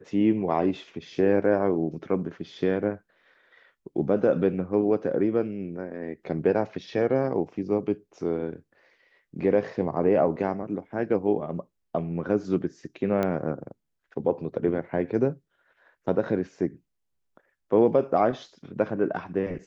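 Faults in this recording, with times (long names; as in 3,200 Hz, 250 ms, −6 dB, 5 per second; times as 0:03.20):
0:13.23: click −15 dBFS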